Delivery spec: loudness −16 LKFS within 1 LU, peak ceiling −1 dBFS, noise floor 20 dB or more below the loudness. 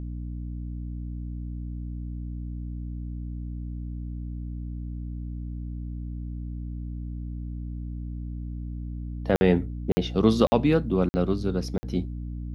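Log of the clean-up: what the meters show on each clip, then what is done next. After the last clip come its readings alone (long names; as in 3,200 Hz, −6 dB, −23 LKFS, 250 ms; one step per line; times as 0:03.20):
number of dropouts 5; longest dropout 50 ms; mains hum 60 Hz; hum harmonics up to 300 Hz; level of the hum −31 dBFS; integrated loudness −29.5 LKFS; sample peak −5.5 dBFS; target loudness −16.0 LKFS
→ repair the gap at 0:09.36/0:09.92/0:10.47/0:11.09/0:11.78, 50 ms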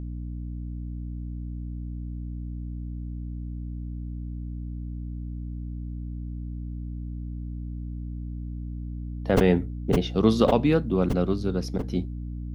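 number of dropouts 0; mains hum 60 Hz; hum harmonics up to 300 Hz; level of the hum −31 dBFS
→ hum removal 60 Hz, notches 5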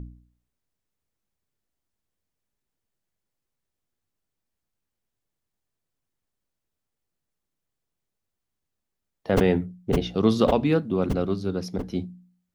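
mains hum none found; integrated loudness −24.5 LKFS; sample peak −6.0 dBFS; target loudness −16.0 LKFS
→ level +8.5 dB
brickwall limiter −1 dBFS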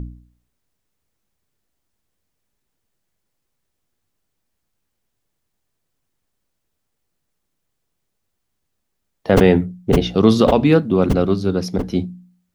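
integrated loudness −16.5 LKFS; sample peak −1.0 dBFS; background noise floor −75 dBFS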